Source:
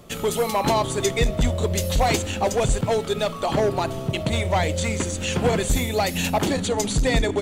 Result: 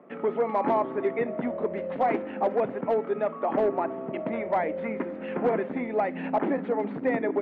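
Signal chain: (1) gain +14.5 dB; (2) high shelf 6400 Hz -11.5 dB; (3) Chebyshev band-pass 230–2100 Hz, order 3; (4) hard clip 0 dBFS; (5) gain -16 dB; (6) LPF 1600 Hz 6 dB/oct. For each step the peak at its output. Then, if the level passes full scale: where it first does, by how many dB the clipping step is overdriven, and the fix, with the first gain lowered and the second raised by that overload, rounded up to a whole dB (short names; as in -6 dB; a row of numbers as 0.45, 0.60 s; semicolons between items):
+4.5, +4.5, +4.5, 0.0, -16.0, -16.0 dBFS; step 1, 4.5 dB; step 1 +9.5 dB, step 5 -11 dB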